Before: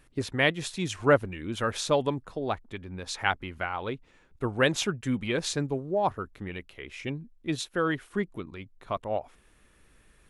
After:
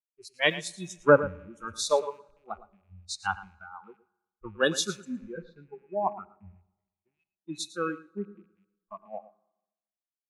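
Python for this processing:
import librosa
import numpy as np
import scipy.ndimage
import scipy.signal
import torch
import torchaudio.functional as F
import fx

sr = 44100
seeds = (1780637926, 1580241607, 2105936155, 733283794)

y = fx.rattle_buzz(x, sr, strikes_db=-44.0, level_db=-20.0)
y = fx.noise_reduce_blind(y, sr, reduce_db=27)
y = fx.lowpass(y, sr, hz=2500.0, slope=24, at=(5.05, 7.14))
y = y + 10.0 ** (-14.0 / 20.0) * np.pad(y, (int(114 * sr / 1000.0), 0))[:len(y)]
y = fx.rev_fdn(y, sr, rt60_s=2.9, lf_ratio=1.2, hf_ratio=0.6, size_ms=49.0, drr_db=19.0)
y = fx.band_widen(y, sr, depth_pct=100)
y = F.gain(torch.from_numpy(y), -5.5).numpy()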